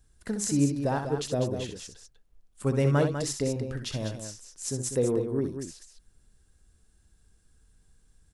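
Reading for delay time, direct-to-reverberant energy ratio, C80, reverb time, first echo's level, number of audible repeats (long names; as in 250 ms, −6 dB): 64 ms, no reverb audible, no reverb audible, no reverb audible, −7.5 dB, 2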